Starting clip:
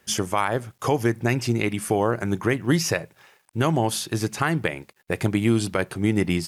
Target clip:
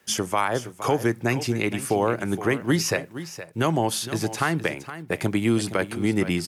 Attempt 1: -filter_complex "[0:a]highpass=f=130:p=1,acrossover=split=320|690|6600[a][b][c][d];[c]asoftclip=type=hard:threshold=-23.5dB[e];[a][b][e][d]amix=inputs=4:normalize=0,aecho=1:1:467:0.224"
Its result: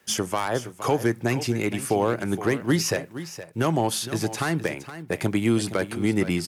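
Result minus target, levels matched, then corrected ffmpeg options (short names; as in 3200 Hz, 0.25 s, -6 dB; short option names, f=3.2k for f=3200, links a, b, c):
hard clip: distortion +31 dB
-filter_complex "[0:a]highpass=f=130:p=1,acrossover=split=320|690|6600[a][b][c][d];[c]asoftclip=type=hard:threshold=-11.5dB[e];[a][b][e][d]amix=inputs=4:normalize=0,aecho=1:1:467:0.224"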